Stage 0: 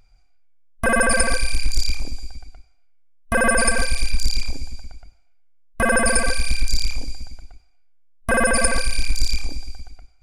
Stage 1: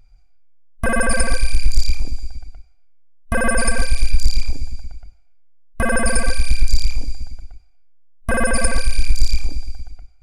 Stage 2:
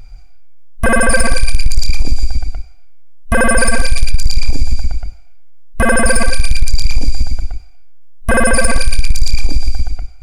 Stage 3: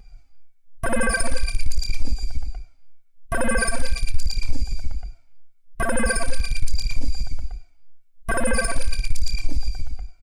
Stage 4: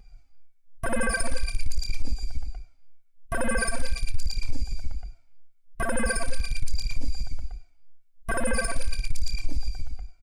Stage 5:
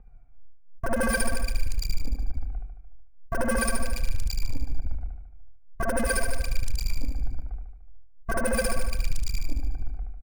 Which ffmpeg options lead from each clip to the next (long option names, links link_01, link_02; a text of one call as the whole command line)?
ffmpeg -i in.wav -af "lowshelf=frequency=180:gain=8.5,volume=-2.5dB" out.wav
ffmpeg -i in.wav -af "asoftclip=type=tanh:threshold=-5.5dB,alimiter=level_in=17dB:limit=-1dB:release=50:level=0:latency=1,volume=-1dB" out.wav
ffmpeg -i in.wav -filter_complex "[0:a]asplit=2[link_01][link_02];[link_02]adelay=2,afreqshift=-2.8[link_03];[link_01][link_03]amix=inputs=2:normalize=1,volume=-7dB" out.wav
ffmpeg -i in.wav -af "asoftclip=type=hard:threshold=-8dB,volume=-4.5dB" out.wav
ffmpeg -i in.wav -filter_complex "[0:a]acrossover=split=490|1800[link_01][link_02][link_03];[link_03]acrusher=bits=4:mix=0:aa=0.5[link_04];[link_01][link_02][link_04]amix=inputs=3:normalize=0,aecho=1:1:74|148|222|296|370|444|518|592:0.562|0.326|0.189|0.11|0.0636|0.0369|0.0214|0.0124" out.wav